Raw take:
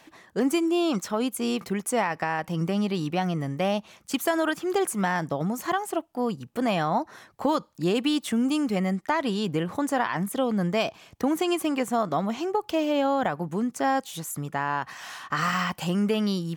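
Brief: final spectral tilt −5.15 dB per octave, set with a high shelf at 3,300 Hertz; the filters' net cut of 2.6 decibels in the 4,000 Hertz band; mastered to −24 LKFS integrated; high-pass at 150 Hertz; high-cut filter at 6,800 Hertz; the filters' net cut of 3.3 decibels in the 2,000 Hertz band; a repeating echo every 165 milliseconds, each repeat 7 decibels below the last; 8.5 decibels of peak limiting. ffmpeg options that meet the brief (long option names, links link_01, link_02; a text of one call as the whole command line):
ffmpeg -i in.wav -af "highpass=150,lowpass=6800,equalizer=frequency=2000:width_type=o:gain=-5,highshelf=frequency=3300:gain=7.5,equalizer=frequency=4000:width_type=o:gain=-6.5,alimiter=limit=-20dB:level=0:latency=1,aecho=1:1:165|330|495|660|825:0.447|0.201|0.0905|0.0407|0.0183,volume=5dB" out.wav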